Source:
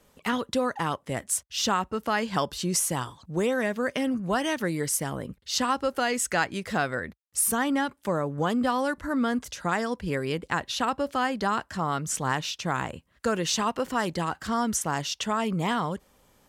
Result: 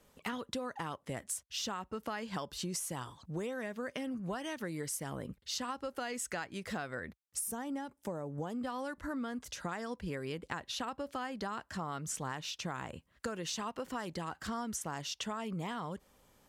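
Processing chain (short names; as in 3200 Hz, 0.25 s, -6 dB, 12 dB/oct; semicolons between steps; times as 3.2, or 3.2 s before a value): compressor, threshold -31 dBFS, peak gain reduction 11.5 dB; spectral gain 7.4–8.54, 990–4900 Hz -6 dB; gain -4.5 dB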